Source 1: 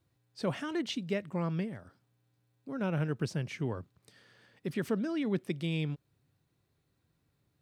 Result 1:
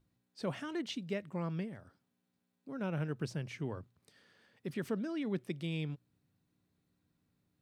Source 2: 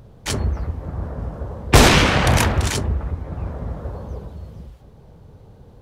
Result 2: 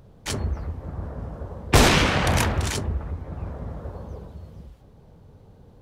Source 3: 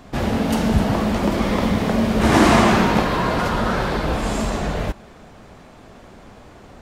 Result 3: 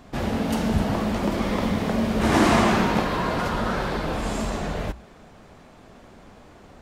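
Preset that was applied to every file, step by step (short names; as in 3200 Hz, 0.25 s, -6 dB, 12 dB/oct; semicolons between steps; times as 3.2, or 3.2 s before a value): hum 60 Hz, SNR 33 dB; notches 60/120 Hz; gain -4.5 dB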